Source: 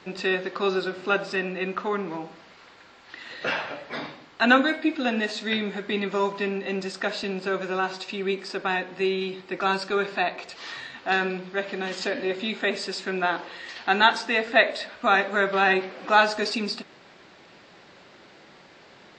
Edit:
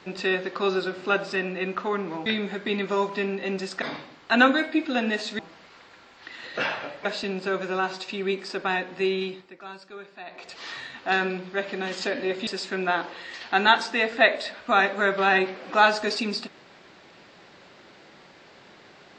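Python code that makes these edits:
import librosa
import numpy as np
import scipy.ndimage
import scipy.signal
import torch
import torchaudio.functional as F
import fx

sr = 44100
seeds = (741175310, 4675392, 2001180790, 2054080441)

y = fx.edit(x, sr, fx.swap(start_s=2.26, length_s=1.66, other_s=5.49, other_length_s=1.56),
    fx.fade_down_up(start_s=9.23, length_s=1.33, db=-16.5, fade_s=0.31),
    fx.cut(start_s=12.47, length_s=0.35), tone=tone)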